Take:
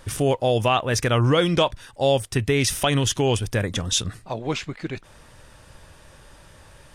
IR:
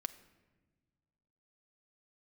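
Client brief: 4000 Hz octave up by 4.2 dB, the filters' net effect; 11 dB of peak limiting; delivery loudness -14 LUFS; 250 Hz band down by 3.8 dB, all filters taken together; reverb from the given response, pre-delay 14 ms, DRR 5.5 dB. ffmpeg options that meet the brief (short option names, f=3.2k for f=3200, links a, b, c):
-filter_complex "[0:a]equalizer=f=250:t=o:g=-5.5,equalizer=f=4k:t=o:g=5.5,alimiter=limit=-15.5dB:level=0:latency=1,asplit=2[a][b];[1:a]atrim=start_sample=2205,adelay=14[c];[b][c]afir=irnorm=-1:irlink=0,volume=-4dB[d];[a][d]amix=inputs=2:normalize=0,volume=11.5dB"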